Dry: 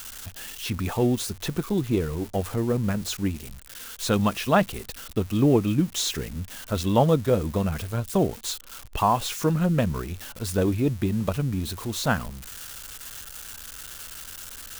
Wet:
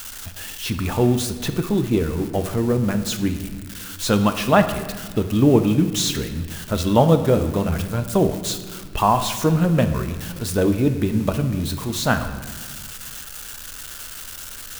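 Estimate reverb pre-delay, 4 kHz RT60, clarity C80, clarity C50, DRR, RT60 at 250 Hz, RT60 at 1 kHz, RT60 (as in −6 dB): 3 ms, 1.2 s, 11.0 dB, 9.5 dB, 7.5 dB, 2.1 s, 1.4 s, 1.5 s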